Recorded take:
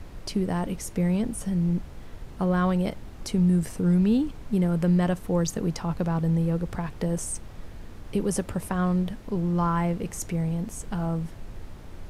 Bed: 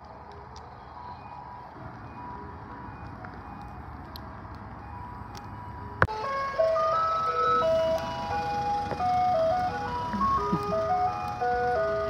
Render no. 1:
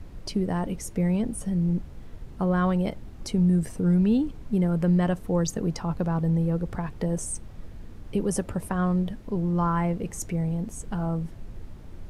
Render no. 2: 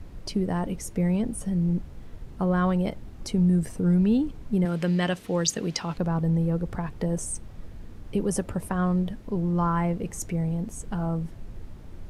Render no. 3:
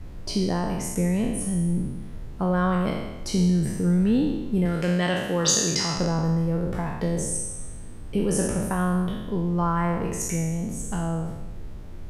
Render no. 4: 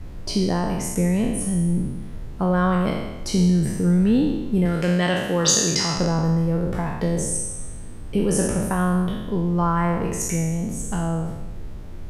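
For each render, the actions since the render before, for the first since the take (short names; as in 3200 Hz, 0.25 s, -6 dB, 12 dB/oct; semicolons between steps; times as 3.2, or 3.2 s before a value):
denoiser 6 dB, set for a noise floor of -43 dBFS
4.65–5.98 weighting filter D
spectral trails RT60 1.11 s
gain +3 dB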